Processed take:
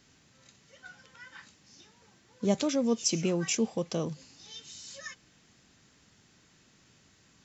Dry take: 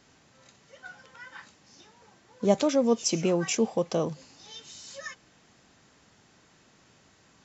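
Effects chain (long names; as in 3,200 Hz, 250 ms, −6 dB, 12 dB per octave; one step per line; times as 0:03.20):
parametric band 750 Hz −8 dB 2.1 octaves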